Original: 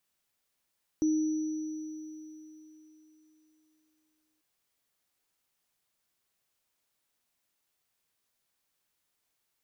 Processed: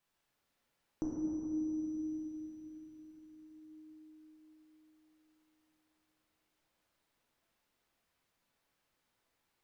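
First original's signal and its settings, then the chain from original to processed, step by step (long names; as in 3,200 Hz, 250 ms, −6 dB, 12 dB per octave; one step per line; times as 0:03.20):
inharmonic partials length 3.39 s, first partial 311 Hz, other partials 5,910 Hz, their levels −19 dB, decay 3.53 s, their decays 3.88 s, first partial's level −22.5 dB
high-shelf EQ 4,300 Hz −9.5 dB
downward compressor, threshold −37 dBFS
rectangular room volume 180 cubic metres, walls hard, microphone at 0.71 metres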